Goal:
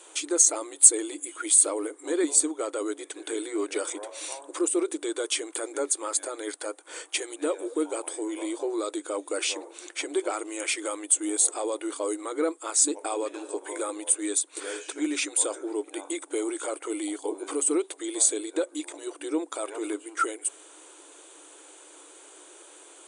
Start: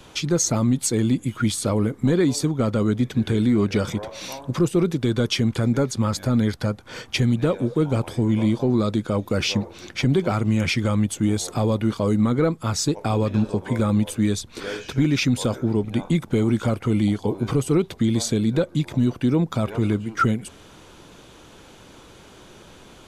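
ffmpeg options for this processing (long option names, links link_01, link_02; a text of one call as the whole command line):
ffmpeg -i in.wav -af "afftfilt=real='re*between(b*sr/4096,290,9900)':imag='im*between(b*sr/4096,290,9900)':win_size=4096:overlap=0.75,aexciter=amount=14.8:drive=3.5:freq=7700,volume=-5dB" out.wav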